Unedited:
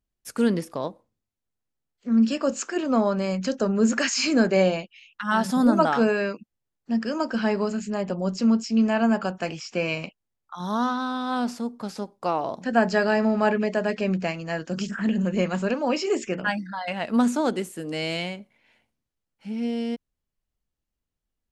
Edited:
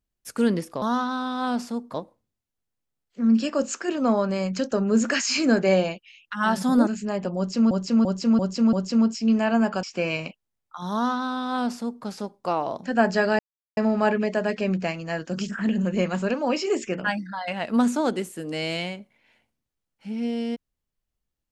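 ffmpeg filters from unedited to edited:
-filter_complex "[0:a]asplit=10[a][b][c][d][e][f][g][h][i][j];[a]atrim=end=0.822[k];[b]atrim=start=10.708:end=11.832[l];[c]atrim=start=0.818:end=5.752[m];[d]atrim=start=7.718:end=8.562[n];[e]atrim=start=8.218:end=8.562[o];[f]atrim=start=8.218:end=8.562[p];[g]atrim=start=8.218:end=8.562[q];[h]atrim=start=8.218:end=9.322[r];[i]atrim=start=9.608:end=13.17,asetpts=PTS-STARTPTS,afade=t=out:st=3.558:d=0.004:c=hsin,apad=pad_dur=0.38[s];[j]atrim=start=13.17,asetpts=PTS-STARTPTS,afade=t=in:d=0.004:c=hsin[t];[k][l]acrossfade=d=0.004:c1=hsin:c2=hsin[u];[u][m]acrossfade=d=0.004:c1=hsin:c2=hsin[v];[v][n]acrossfade=d=0.004:c1=hsin:c2=hsin[w];[w][o]acrossfade=d=0.004:c1=hsin:c2=hsin[x];[x][p]acrossfade=d=0.004:c1=hsin:c2=hsin[y];[y][q]acrossfade=d=0.004:c1=hsin:c2=hsin[z];[z][r]acrossfade=d=0.004:c1=hsin:c2=hsin[aa];[s][t]concat=n=2:v=0:a=1[ab];[aa][ab]acrossfade=d=0.004:c1=hsin:c2=hsin"

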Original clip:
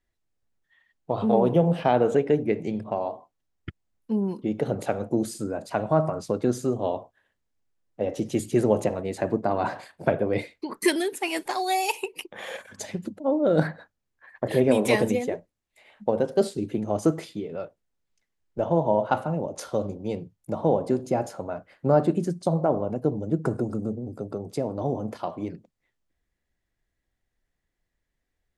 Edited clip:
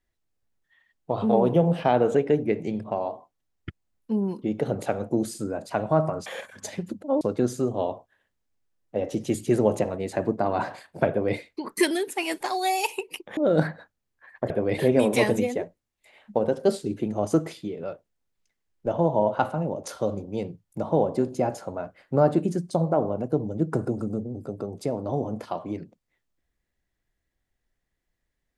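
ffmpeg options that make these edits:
-filter_complex "[0:a]asplit=6[a][b][c][d][e][f];[a]atrim=end=6.262[g];[b]atrim=start=12.418:end=13.372[h];[c]atrim=start=6.258:end=12.422[i];[d]atrim=start=13.368:end=14.502[j];[e]atrim=start=10.138:end=10.422[k];[f]atrim=start=14.498[l];[g][h]acrossfade=d=0.004:c1=hsin:c2=hsin[m];[m][i]acrossfade=d=0.004:c1=hsin:c2=hsin[n];[n][j]acrossfade=d=0.004:c1=hsin:c2=hsin[o];[o][k]acrossfade=d=0.004:c1=hsin:c2=hsin[p];[p][l]acrossfade=d=0.004:c1=hsin:c2=hsin"

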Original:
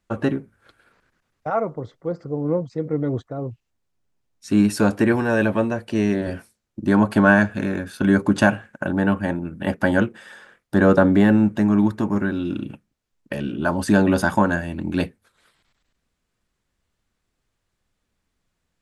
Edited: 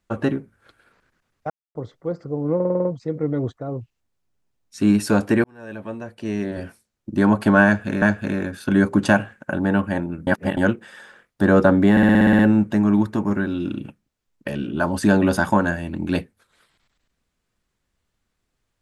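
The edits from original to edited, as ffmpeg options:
-filter_complex "[0:a]asplit=21[a][b][c][d][e][f][g][h][i][j][k][l][m][n][o][p][q][r][s][t][u];[a]atrim=end=1.5,asetpts=PTS-STARTPTS,afade=t=out:st=1.496:d=0.004:c=hsin[v];[b]atrim=start=1.5:end=1.75,asetpts=PTS-STARTPTS,volume=0[w];[c]atrim=start=1.75:end=2.602,asetpts=PTS-STARTPTS,afade=t=in:d=0.004:c=hsin[x];[d]atrim=start=2.548:end=2.602[y];[e]atrim=start=2.548:end=2.602[z];[f]atrim=start=2.548:end=2.602[aa];[g]atrim=start=2.548:end=2.602[ab];[h]atrim=start=2.548:end=2.602[ac];[i]atrim=start=2.548:end=5.14,asetpts=PTS-STARTPTS,afade=t=out:st=2.588:d=0.004:c=hsin[ad];[j]atrim=start=5.14:end=7.722,asetpts=PTS-STARTPTS,afade=t=in:d=1.67[ae];[k]atrim=start=7.348:end=9.602[af];[l]atrim=start=9.598:end=9.902,asetpts=PTS-STARTPTS,areverse[ag];[m]atrim=start=9.898:end=11.302[ah];[n]atrim=start=11.238:end=11.302[ai];[o]atrim=start=11.238:end=11.302[aj];[p]atrim=start=11.238:end=11.302[ak];[q]atrim=start=11.238:end=11.302[al];[r]atrim=start=11.238:end=11.302[am];[s]atrim=start=11.238:end=11.302[an];[t]atrim=start=11.238:end=11.302[ao];[u]atrim=start=11.238[ap];[v][w][x]concat=n=3:v=0:a=1[aq];[aq][y]acrossfade=d=0.004:c1=hsin:c2=hsin[ar];[ar][z]acrossfade=d=0.004:c1=hsin:c2=hsin[as];[as][aa]acrossfade=d=0.004:c1=hsin:c2=hsin[at];[at][ab]acrossfade=d=0.004:c1=hsin:c2=hsin[au];[au][ac]acrossfade=d=0.004:c1=hsin:c2=hsin[av];[ad][ae]concat=n=2:v=0:a=1[aw];[av][aw]acrossfade=d=0.004:c1=hsin:c2=hsin[ax];[ax][af]acrossfade=d=0.004:c1=hsin:c2=hsin[ay];[ay][ag]acrossfade=d=0.004:c1=hsin:c2=hsin[az];[az][ah]acrossfade=d=0.004:c1=hsin:c2=hsin[ba];[ba][ai]acrossfade=d=0.004:c1=hsin:c2=hsin[bb];[bb][aj]acrossfade=d=0.004:c1=hsin:c2=hsin[bc];[bc][ak]acrossfade=d=0.004:c1=hsin:c2=hsin[bd];[bd][al]acrossfade=d=0.004:c1=hsin:c2=hsin[be];[be][am]acrossfade=d=0.004:c1=hsin:c2=hsin[bf];[bf][an]acrossfade=d=0.004:c1=hsin:c2=hsin[bg];[bg][ao]acrossfade=d=0.004:c1=hsin:c2=hsin[bh];[bh][ap]acrossfade=d=0.004:c1=hsin:c2=hsin"

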